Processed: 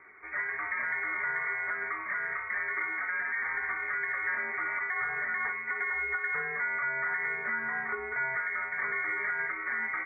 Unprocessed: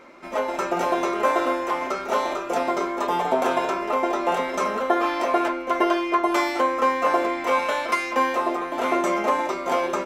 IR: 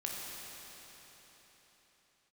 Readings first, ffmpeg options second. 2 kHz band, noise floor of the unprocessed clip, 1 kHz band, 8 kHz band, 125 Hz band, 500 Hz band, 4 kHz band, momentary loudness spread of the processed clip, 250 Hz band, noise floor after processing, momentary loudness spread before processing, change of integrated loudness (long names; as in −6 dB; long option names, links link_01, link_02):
+2.0 dB, −32 dBFS, −15.5 dB, below −40 dB, below −10 dB, −22.5 dB, below −40 dB, 2 LU, −27.0 dB, −38 dBFS, 4 LU, −7.5 dB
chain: -af "alimiter=limit=-17dB:level=0:latency=1:release=105,lowpass=frequency=2100:width_type=q:width=0.5098,lowpass=frequency=2100:width_type=q:width=0.6013,lowpass=frequency=2100:width_type=q:width=0.9,lowpass=frequency=2100:width_type=q:width=2.563,afreqshift=-2500,volume=-6dB"